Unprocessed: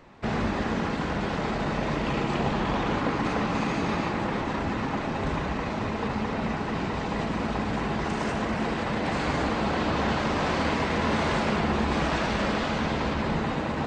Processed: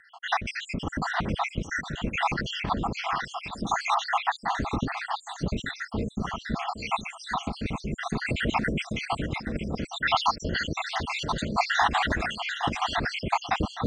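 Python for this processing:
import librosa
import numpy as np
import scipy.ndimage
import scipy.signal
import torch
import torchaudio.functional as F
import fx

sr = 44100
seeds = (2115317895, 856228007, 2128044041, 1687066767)

p1 = fx.spec_dropout(x, sr, seeds[0], share_pct=78)
p2 = fx.low_shelf(p1, sr, hz=240.0, db=10.5)
p3 = fx.over_compress(p2, sr, threshold_db=-32.0, ratio=-1.0)
p4 = fx.rotary_switch(p3, sr, hz=5.5, then_hz=0.65, switch_at_s=1.18)
p5 = p4 + fx.echo_single(p4, sr, ms=814, db=-11.5, dry=0)
y = F.gain(torch.from_numpy(p5), 7.5).numpy()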